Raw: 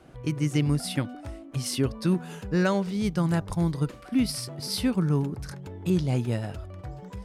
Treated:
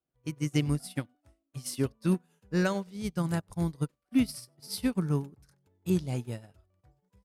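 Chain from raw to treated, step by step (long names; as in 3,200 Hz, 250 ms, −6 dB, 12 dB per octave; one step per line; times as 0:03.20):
high-shelf EQ 7,600 Hz +10.5 dB
on a send: single-tap delay 95 ms −24 dB
on the sum: expander for the loud parts 2.5 to 1, over −45 dBFS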